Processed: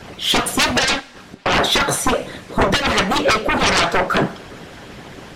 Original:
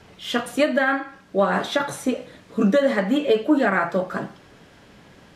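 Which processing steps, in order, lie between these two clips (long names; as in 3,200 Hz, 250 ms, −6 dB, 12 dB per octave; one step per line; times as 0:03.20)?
sine wavefolder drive 13 dB, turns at −8.5 dBFS
harmonic and percussive parts rebalanced harmonic −13 dB
0:00.99–0:01.46: gate with flip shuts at −21 dBFS, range −36 dB
coupled-rooms reverb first 0.34 s, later 1.8 s, from −18 dB, DRR 11.5 dB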